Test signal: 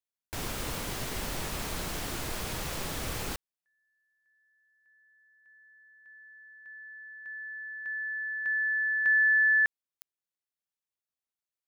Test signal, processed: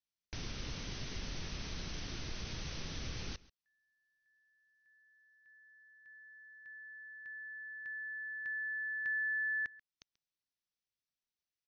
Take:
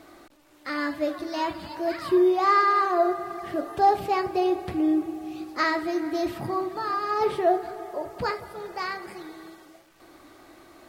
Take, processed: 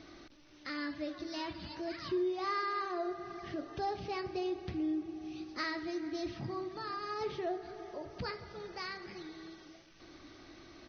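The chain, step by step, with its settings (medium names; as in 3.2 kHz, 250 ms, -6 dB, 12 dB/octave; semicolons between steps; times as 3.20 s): peaking EQ 810 Hz -11.5 dB 2.5 oct; compression 1.5:1, threshold -52 dBFS; brick-wall FIR low-pass 6.3 kHz; delay 136 ms -21.5 dB; trim +3 dB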